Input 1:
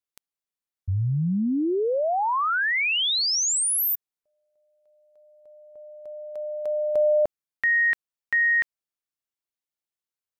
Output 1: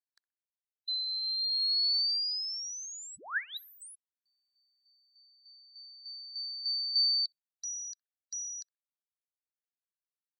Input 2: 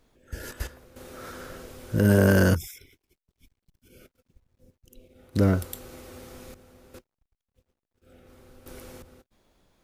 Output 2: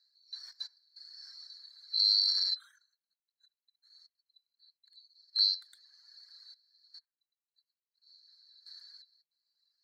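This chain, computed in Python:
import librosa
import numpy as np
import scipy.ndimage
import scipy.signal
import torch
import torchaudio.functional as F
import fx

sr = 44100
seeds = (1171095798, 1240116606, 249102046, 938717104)

y = fx.band_swap(x, sr, width_hz=4000)
y = fx.dereverb_blind(y, sr, rt60_s=1.4)
y = fx.double_bandpass(y, sr, hz=2700.0, octaves=1.4)
y = fx.echo_bbd(y, sr, ms=63, stages=1024, feedback_pct=39, wet_db=-23.0)
y = F.gain(torch.from_numpy(y), -3.5).numpy()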